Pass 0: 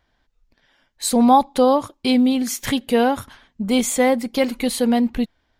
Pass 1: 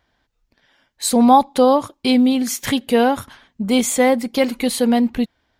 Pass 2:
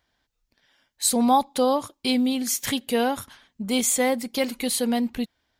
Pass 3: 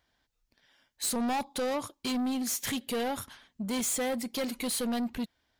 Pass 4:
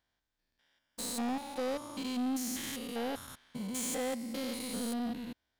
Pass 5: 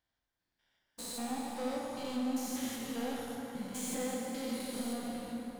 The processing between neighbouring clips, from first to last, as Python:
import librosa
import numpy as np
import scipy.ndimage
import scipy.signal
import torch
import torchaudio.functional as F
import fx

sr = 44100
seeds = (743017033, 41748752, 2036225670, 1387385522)

y1 = fx.highpass(x, sr, hz=61.0, slope=6)
y1 = y1 * librosa.db_to_amplitude(2.0)
y2 = fx.high_shelf(y1, sr, hz=3300.0, db=9.0)
y2 = y2 * librosa.db_to_amplitude(-8.0)
y3 = 10.0 ** (-25.5 / 20.0) * np.tanh(y2 / 10.0 ** (-25.5 / 20.0))
y3 = y3 * librosa.db_to_amplitude(-2.0)
y4 = fx.spec_steps(y3, sr, hold_ms=200)
y4 = fx.leveller(y4, sr, passes=1)
y4 = y4 * librosa.db_to_amplitude(-4.5)
y5 = fx.rev_plate(y4, sr, seeds[0], rt60_s=4.8, hf_ratio=0.5, predelay_ms=0, drr_db=-2.0)
y5 = y5 * librosa.db_to_amplitude(-5.5)